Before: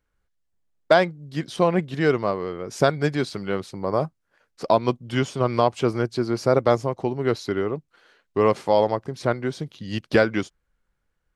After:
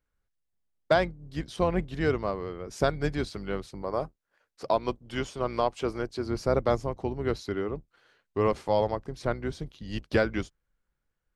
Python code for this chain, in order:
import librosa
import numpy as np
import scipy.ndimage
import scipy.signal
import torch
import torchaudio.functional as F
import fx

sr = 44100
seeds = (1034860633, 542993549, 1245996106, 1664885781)

y = fx.octave_divider(x, sr, octaves=2, level_db=-4.0)
y = fx.bass_treble(y, sr, bass_db=-7, treble_db=0, at=(3.82, 6.26))
y = y * librosa.db_to_amplitude(-6.5)